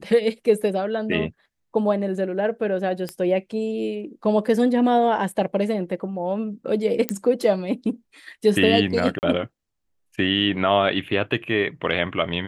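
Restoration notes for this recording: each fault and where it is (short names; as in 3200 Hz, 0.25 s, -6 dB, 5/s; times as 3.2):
3.09 pop -15 dBFS
7.09 pop -6 dBFS
9.19–9.23 gap 39 ms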